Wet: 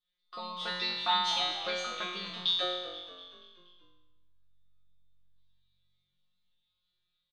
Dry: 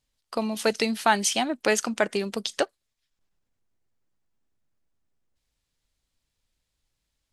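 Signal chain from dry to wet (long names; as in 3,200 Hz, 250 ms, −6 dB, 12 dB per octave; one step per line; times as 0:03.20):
low-pass with resonance 3,600 Hz, resonance Q 14
parametric band 1,200 Hz +13.5 dB 0.37 octaves
tuned comb filter 180 Hz, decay 0.94 s, harmonics all, mix 100%
echo with shifted repeats 240 ms, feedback 54%, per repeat −47 Hz, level −14 dB
rectangular room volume 2,700 cubic metres, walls furnished, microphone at 0.71 metres
level +5.5 dB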